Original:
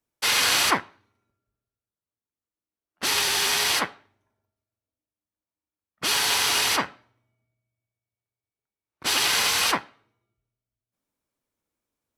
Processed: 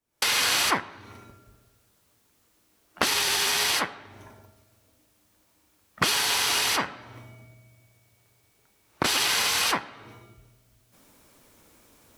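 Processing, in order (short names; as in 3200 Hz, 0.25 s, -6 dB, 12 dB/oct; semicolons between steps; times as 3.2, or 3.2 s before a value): recorder AGC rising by 79 dB/s; gain -2.5 dB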